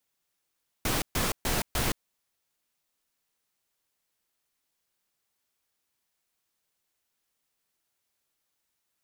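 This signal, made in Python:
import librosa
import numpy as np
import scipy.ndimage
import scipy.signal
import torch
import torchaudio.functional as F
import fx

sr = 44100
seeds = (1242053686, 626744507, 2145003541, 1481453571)

y = fx.noise_burst(sr, seeds[0], colour='pink', on_s=0.17, off_s=0.13, bursts=4, level_db=-27.5)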